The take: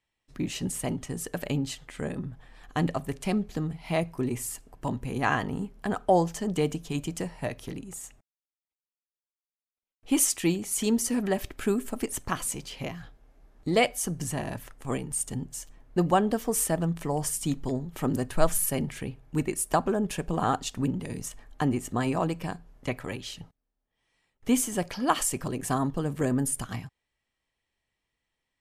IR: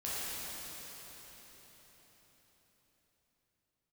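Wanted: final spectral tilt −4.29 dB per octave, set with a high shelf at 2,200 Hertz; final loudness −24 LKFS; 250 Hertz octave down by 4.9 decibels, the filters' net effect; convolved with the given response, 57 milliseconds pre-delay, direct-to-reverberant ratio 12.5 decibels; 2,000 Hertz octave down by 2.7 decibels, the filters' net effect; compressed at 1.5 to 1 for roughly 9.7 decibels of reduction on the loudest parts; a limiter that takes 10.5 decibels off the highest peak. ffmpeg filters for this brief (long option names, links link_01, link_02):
-filter_complex "[0:a]equalizer=frequency=250:width_type=o:gain=-6.5,equalizer=frequency=2000:width_type=o:gain=-5,highshelf=frequency=2200:gain=3,acompressor=threshold=-42dB:ratio=1.5,alimiter=level_in=2dB:limit=-24dB:level=0:latency=1,volume=-2dB,asplit=2[link_01][link_02];[1:a]atrim=start_sample=2205,adelay=57[link_03];[link_02][link_03]afir=irnorm=-1:irlink=0,volume=-17.5dB[link_04];[link_01][link_04]amix=inputs=2:normalize=0,volume=14dB"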